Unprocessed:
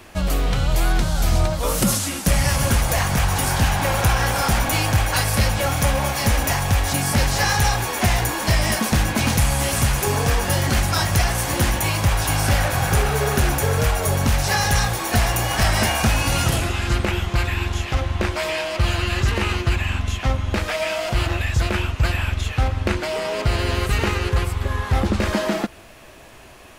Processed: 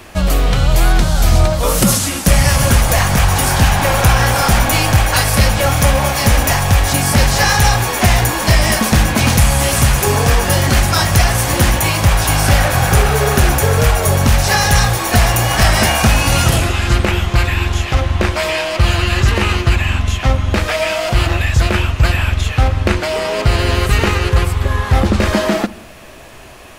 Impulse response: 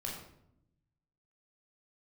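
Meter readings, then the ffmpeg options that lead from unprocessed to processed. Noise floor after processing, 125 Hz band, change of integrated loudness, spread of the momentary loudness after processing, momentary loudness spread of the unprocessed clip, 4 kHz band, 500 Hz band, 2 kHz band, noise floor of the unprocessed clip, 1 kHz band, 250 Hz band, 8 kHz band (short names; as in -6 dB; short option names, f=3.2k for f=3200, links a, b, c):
-25 dBFS, +7.0 dB, +7.0 dB, 4 LU, 4 LU, +6.5 dB, +7.0 dB, +6.5 dB, -32 dBFS, +6.5 dB, +6.5 dB, +6.5 dB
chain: -filter_complex "[0:a]asplit=2[a][b];[1:a]atrim=start_sample=2205[c];[b][c]afir=irnorm=-1:irlink=0,volume=-16.5dB[d];[a][d]amix=inputs=2:normalize=0,volume=6dB"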